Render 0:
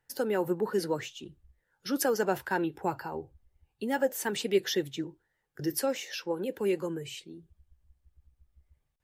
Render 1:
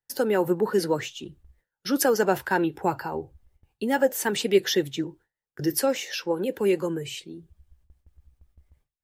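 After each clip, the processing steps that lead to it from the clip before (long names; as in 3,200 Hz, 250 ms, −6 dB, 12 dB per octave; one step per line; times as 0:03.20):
noise gate with hold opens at −54 dBFS
level +6 dB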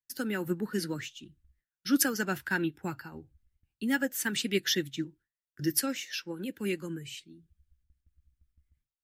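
flat-topped bell 640 Hz −13.5 dB
expander for the loud parts 1.5 to 1, over −44 dBFS
level +1 dB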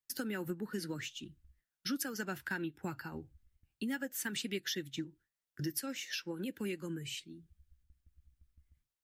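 downward compressor 4 to 1, threshold −38 dBFS, peak gain reduction 15.5 dB
level +1.5 dB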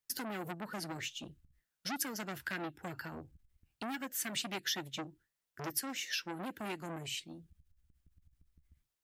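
saturating transformer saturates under 2,300 Hz
level +3 dB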